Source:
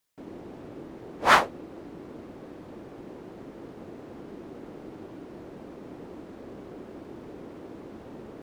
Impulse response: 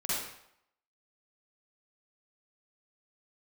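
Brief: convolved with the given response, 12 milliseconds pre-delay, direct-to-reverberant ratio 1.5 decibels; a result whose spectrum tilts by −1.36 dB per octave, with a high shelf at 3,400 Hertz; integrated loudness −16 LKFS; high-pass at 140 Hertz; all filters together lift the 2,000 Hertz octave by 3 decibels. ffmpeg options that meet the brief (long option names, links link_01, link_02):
-filter_complex "[0:a]highpass=140,equalizer=frequency=2000:width_type=o:gain=6,highshelf=frequency=3400:gain=-8,asplit=2[link_01][link_02];[1:a]atrim=start_sample=2205,adelay=12[link_03];[link_02][link_03]afir=irnorm=-1:irlink=0,volume=-8dB[link_04];[link_01][link_04]amix=inputs=2:normalize=0,volume=4dB"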